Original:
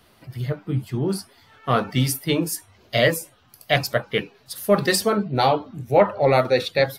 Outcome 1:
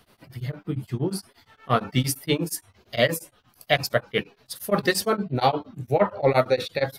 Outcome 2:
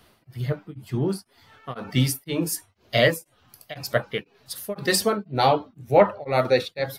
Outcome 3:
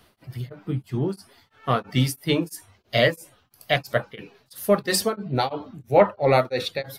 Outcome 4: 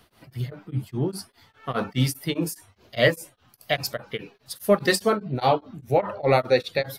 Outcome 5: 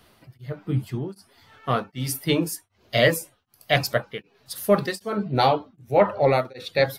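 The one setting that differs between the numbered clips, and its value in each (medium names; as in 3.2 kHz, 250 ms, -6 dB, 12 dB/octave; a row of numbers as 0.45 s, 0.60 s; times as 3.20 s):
tremolo of two beating tones, nulls at: 8.6 Hz, 2 Hz, 3 Hz, 4.9 Hz, 1.3 Hz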